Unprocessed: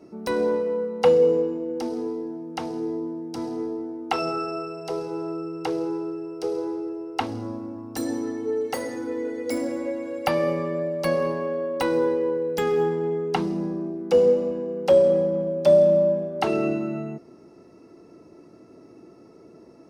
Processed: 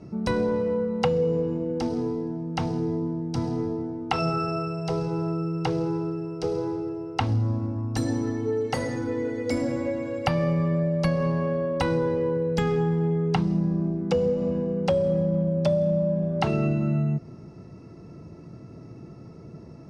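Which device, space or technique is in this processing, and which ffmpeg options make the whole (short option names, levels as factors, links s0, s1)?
jukebox: -af "lowpass=7100,lowshelf=f=210:t=q:w=1.5:g=13,acompressor=threshold=0.0708:ratio=5,volume=1.33"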